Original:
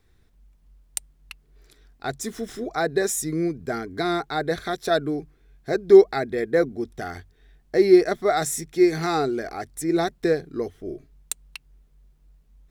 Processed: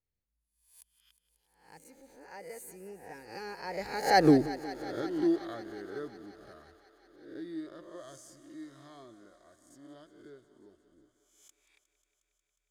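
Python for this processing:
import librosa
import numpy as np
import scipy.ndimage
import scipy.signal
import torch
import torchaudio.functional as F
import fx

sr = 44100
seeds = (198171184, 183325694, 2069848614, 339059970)

y = fx.spec_swells(x, sr, rise_s=0.65)
y = fx.doppler_pass(y, sr, speed_mps=54, closest_m=3.2, pass_at_s=4.3)
y = fx.echo_thinned(y, sr, ms=180, feedback_pct=82, hz=250.0, wet_db=-15.5)
y = F.gain(torch.from_numpy(y), 6.5).numpy()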